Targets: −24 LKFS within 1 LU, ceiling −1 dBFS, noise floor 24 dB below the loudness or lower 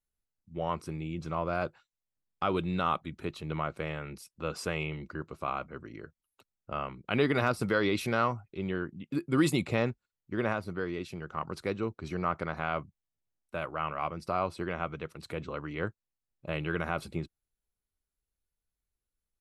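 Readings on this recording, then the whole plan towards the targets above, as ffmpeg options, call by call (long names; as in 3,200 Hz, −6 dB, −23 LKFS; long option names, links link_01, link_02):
integrated loudness −33.5 LKFS; sample peak −12.5 dBFS; target loudness −24.0 LKFS
→ -af "volume=9.5dB"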